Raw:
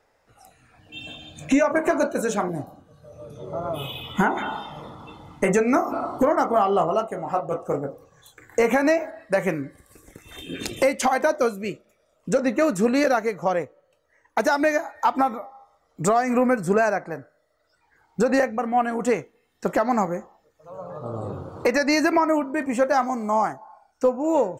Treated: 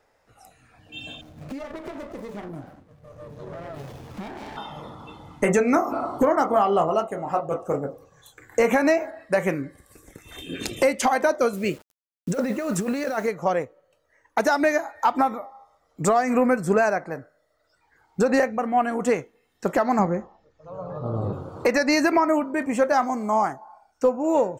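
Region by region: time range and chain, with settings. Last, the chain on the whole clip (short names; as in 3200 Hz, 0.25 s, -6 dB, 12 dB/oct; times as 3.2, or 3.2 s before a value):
1.21–4.57 median filter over 15 samples + compressor, threshold -32 dBFS + running maximum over 17 samples
11.53–13.28 negative-ratio compressor -25 dBFS + requantised 8-bit, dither none
19.99–21.33 LPF 5800 Hz 24 dB/oct + low shelf 260 Hz +8 dB
whole clip: dry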